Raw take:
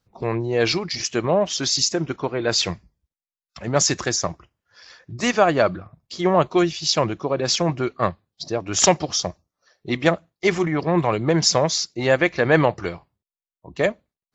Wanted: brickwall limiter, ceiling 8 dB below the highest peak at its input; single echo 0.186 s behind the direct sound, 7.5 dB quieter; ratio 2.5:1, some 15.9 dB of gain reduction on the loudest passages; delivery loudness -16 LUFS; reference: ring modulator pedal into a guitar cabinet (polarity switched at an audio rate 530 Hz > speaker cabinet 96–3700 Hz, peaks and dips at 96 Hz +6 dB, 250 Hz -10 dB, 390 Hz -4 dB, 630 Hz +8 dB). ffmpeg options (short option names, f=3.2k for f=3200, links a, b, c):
-af "acompressor=threshold=-37dB:ratio=2.5,alimiter=level_in=1dB:limit=-24dB:level=0:latency=1,volume=-1dB,aecho=1:1:186:0.422,aeval=exprs='val(0)*sgn(sin(2*PI*530*n/s))':c=same,highpass=96,equalizer=f=96:t=q:w=4:g=6,equalizer=f=250:t=q:w=4:g=-10,equalizer=f=390:t=q:w=4:g=-4,equalizer=f=630:t=q:w=4:g=8,lowpass=f=3.7k:w=0.5412,lowpass=f=3.7k:w=1.3066,volume=20.5dB"